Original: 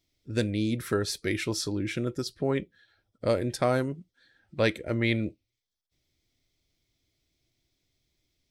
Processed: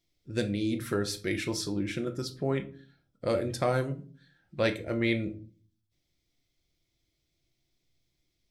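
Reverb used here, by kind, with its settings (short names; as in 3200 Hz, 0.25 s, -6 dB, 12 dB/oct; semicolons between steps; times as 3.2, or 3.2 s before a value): shoebox room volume 310 m³, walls furnished, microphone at 0.83 m; gain -3 dB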